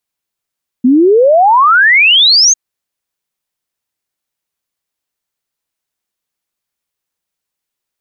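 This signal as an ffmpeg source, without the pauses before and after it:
ffmpeg -f lavfi -i "aevalsrc='0.631*clip(min(t,1.7-t)/0.01,0,1)*sin(2*PI*240*1.7/log(6600/240)*(exp(log(6600/240)*t/1.7)-1))':duration=1.7:sample_rate=44100" out.wav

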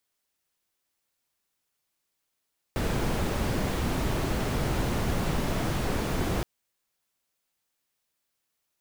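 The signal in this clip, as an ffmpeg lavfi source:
ffmpeg -f lavfi -i "anoisesrc=color=brown:amplitude=0.209:duration=3.67:sample_rate=44100:seed=1" out.wav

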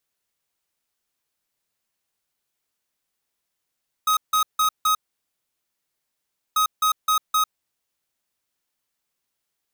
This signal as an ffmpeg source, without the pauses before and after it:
ffmpeg -f lavfi -i "aevalsrc='0.112*(2*lt(mod(1260*t,1),0.5)-1)*clip(min(mod(mod(t,2.49),0.26),0.1-mod(mod(t,2.49),0.26))/0.005,0,1)*lt(mod(t,2.49),1.04)':duration=4.98:sample_rate=44100" out.wav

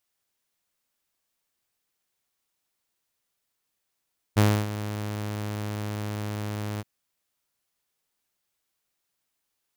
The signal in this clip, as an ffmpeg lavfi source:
ffmpeg -f lavfi -i "aevalsrc='0.224*(2*mod(105*t,1)-1)':duration=2.474:sample_rate=44100,afade=type=in:duration=0.022,afade=type=out:start_time=0.022:duration=0.278:silence=0.2,afade=type=out:start_time=2.44:duration=0.034" out.wav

